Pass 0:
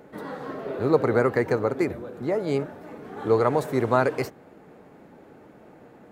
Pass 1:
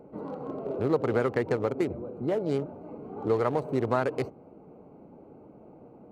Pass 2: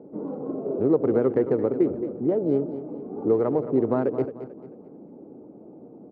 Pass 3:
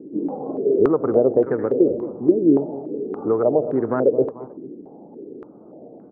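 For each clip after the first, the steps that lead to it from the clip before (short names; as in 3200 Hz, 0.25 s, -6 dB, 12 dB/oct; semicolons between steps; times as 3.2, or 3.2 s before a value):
Wiener smoothing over 25 samples; compressor 2:1, threshold -25 dBFS, peak gain reduction 7 dB
band-pass 300 Hz, Q 1.2; feedback echo 0.221 s, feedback 35%, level -12 dB; gain +7.5 dB
stepped low-pass 3.5 Hz 330–1600 Hz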